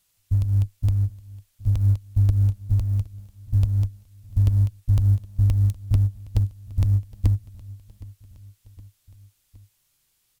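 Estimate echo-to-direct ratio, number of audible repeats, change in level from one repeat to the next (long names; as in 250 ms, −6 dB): −19.5 dB, 3, −4.5 dB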